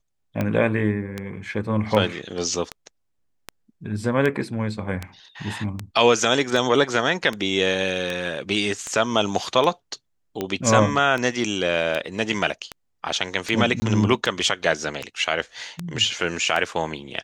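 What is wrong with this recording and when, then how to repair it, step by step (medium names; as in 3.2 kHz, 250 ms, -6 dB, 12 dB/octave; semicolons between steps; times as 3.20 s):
tick 78 rpm -12 dBFS
13.80–13.82 s: dropout 20 ms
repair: de-click; interpolate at 13.80 s, 20 ms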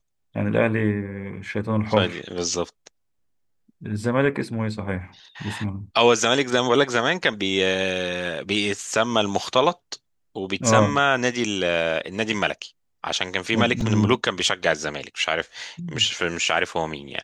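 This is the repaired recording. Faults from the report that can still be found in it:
nothing left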